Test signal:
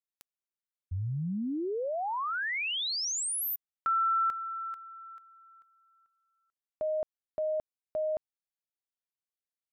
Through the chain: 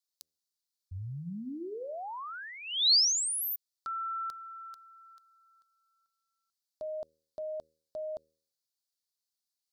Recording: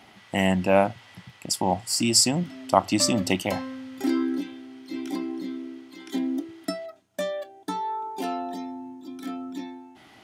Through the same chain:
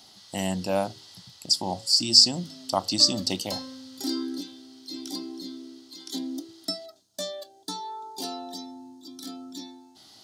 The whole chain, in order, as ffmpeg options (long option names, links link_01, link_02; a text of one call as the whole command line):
ffmpeg -i in.wav -filter_complex "[0:a]highshelf=frequency=3200:width_type=q:width=3:gain=11.5,acrossover=split=5000[link_01][link_02];[link_02]acompressor=threshold=-27dB:ratio=4:attack=1:release=60[link_03];[link_01][link_03]amix=inputs=2:normalize=0,bandreject=frequency=78.95:width_type=h:width=4,bandreject=frequency=157.9:width_type=h:width=4,bandreject=frequency=236.85:width_type=h:width=4,bandreject=frequency=315.8:width_type=h:width=4,bandreject=frequency=394.75:width_type=h:width=4,bandreject=frequency=473.7:width_type=h:width=4,bandreject=frequency=552.65:width_type=h:width=4,volume=-6dB" out.wav